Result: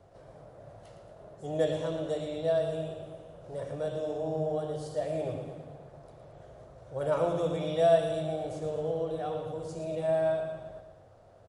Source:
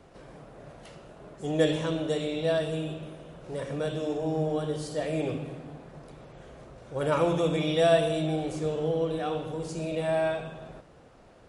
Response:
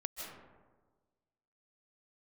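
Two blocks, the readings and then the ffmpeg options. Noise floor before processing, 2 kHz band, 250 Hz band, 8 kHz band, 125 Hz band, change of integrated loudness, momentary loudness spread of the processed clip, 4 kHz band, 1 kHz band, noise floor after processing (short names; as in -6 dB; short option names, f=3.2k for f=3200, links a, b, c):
-54 dBFS, -8.5 dB, -7.5 dB, n/a, -5.5 dB, -2.5 dB, 23 LU, -9.0 dB, -2.0 dB, -56 dBFS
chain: -filter_complex "[0:a]equalizer=f=100:t=o:w=0.67:g=11,equalizer=f=250:t=o:w=0.67:g=-4,equalizer=f=630:t=o:w=0.67:g=9,equalizer=f=2.5k:t=o:w=0.67:g=-5,asplit=2[a][b];[b]aecho=0:1:113|226|339|452|565|678:0.376|0.203|0.11|0.0592|0.032|0.0173[c];[a][c]amix=inputs=2:normalize=0,volume=-8dB"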